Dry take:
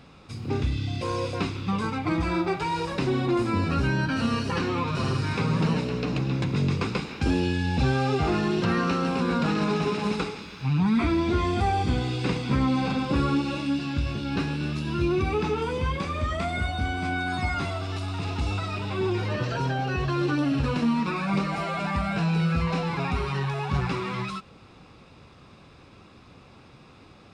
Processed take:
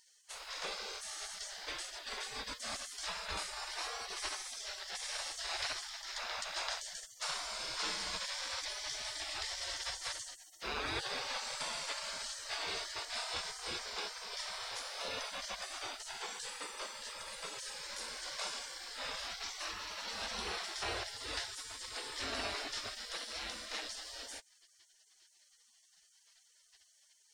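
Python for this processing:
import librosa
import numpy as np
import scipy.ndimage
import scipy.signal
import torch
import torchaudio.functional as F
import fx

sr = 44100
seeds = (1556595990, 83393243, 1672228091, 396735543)

y = fx.spec_gate(x, sr, threshold_db=-30, keep='weak')
y = fx.dynamic_eq(y, sr, hz=2700.0, q=1.2, threshold_db=-57.0, ratio=4.0, max_db=-5)
y = y * librosa.db_to_amplitude(6.5)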